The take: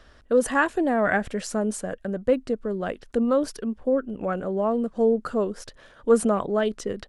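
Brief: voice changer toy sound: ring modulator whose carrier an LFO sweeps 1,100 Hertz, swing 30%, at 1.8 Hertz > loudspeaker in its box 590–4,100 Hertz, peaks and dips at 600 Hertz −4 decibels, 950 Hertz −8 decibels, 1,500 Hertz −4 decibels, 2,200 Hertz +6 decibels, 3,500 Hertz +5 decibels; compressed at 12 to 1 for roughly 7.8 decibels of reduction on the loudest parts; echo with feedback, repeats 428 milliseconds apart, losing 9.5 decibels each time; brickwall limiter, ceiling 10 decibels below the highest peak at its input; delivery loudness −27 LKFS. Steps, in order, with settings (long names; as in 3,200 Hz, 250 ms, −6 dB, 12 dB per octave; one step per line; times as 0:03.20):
downward compressor 12 to 1, threshold −21 dBFS
brickwall limiter −22 dBFS
repeating echo 428 ms, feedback 33%, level −9.5 dB
ring modulator whose carrier an LFO sweeps 1,100 Hz, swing 30%, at 1.8 Hz
loudspeaker in its box 590–4,100 Hz, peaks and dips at 600 Hz −4 dB, 950 Hz −8 dB, 1,500 Hz −4 dB, 2,200 Hz +6 dB, 3,500 Hz +5 dB
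level +8 dB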